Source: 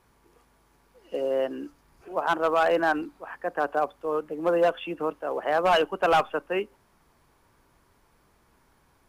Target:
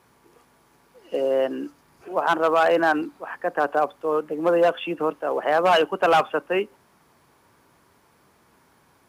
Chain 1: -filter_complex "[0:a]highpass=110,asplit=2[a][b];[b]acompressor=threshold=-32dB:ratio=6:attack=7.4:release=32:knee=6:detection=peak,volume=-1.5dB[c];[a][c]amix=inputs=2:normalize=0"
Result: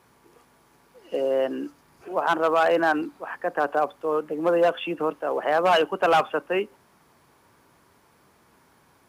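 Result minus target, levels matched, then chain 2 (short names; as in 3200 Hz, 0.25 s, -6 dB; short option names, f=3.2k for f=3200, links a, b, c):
compressor: peak gain reduction +6 dB
-filter_complex "[0:a]highpass=110,asplit=2[a][b];[b]acompressor=threshold=-24.5dB:ratio=6:attack=7.4:release=32:knee=6:detection=peak,volume=-1.5dB[c];[a][c]amix=inputs=2:normalize=0"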